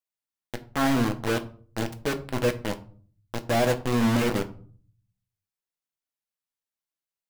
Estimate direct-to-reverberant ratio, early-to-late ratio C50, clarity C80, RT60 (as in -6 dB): 7.0 dB, 16.0 dB, 20.0 dB, 0.45 s